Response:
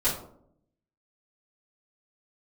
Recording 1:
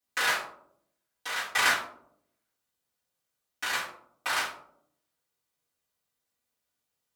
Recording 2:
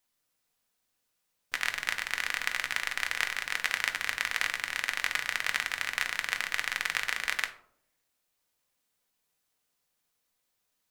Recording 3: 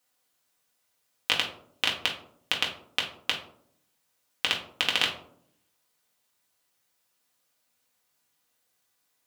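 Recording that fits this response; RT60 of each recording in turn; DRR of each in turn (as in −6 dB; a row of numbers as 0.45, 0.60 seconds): 1; 0.70, 0.70, 0.70 seconds; −11.5, 5.5, −2.0 decibels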